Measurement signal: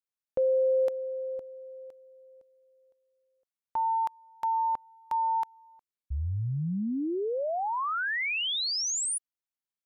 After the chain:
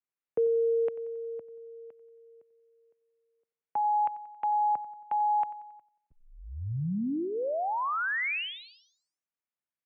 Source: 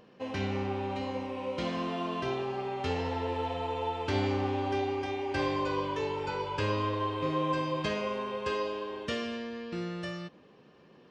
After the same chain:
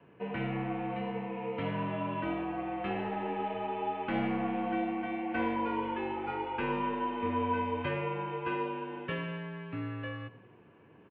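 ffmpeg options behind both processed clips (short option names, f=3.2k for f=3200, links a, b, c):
-af "adynamicequalizer=threshold=0.00282:dfrequency=460:dqfactor=6.3:tfrequency=460:tqfactor=6.3:attack=5:release=100:ratio=0.375:range=3.5:mode=cutabove:tftype=bell,aecho=1:1:91|182|273|364:0.133|0.068|0.0347|0.0177,highpass=f=170:t=q:w=0.5412,highpass=f=170:t=q:w=1.307,lowpass=f=2.8k:t=q:w=0.5176,lowpass=f=2.8k:t=q:w=0.7071,lowpass=f=2.8k:t=q:w=1.932,afreqshift=-63"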